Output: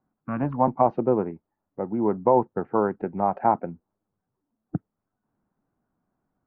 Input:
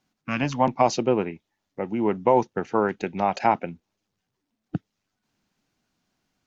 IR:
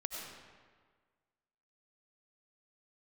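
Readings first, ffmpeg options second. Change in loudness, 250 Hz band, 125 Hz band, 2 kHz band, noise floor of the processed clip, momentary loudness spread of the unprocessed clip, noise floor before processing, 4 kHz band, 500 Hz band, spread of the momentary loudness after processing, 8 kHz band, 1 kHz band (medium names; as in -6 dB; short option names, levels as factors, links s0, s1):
-0.5 dB, 0.0 dB, 0.0 dB, -10.0 dB, -83 dBFS, 14 LU, -81 dBFS, under -30 dB, 0.0 dB, 14 LU, no reading, -0.5 dB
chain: -af "lowpass=f=1300:w=0.5412,lowpass=f=1300:w=1.3066"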